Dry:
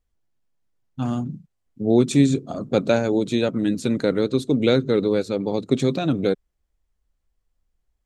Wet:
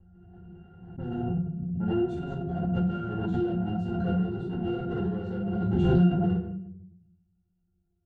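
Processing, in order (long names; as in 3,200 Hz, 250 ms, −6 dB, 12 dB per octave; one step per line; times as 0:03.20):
mu-law and A-law mismatch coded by A
downward compressor 2.5 to 1, threshold −24 dBFS, peak gain reduction 9 dB
parametric band 150 Hz +8 dB 0.86 octaves
gain into a clipping stage and back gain 30.5 dB
rectangular room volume 150 cubic metres, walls mixed, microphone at 2.3 metres
low-pass that shuts in the quiet parts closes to 1,400 Hz, open at −19.5 dBFS
resonances in every octave F, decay 0.18 s
background raised ahead of every attack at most 22 dB per second
level +5 dB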